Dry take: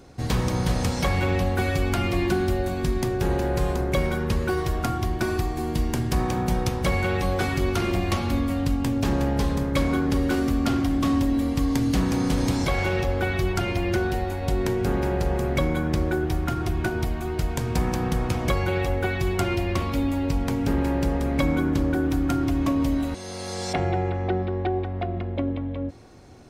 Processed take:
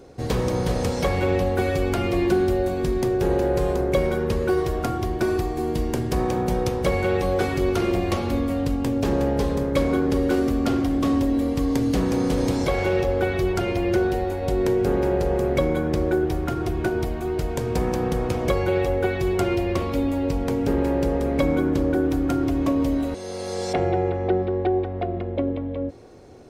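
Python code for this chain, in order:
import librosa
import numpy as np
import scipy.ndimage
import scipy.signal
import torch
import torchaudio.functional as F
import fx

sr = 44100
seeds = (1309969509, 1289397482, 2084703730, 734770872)

y = fx.peak_eq(x, sr, hz=460.0, db=10.0, octaves=1.0)
y = F.gain(torch.from_numpy(y), -2.0).numpy()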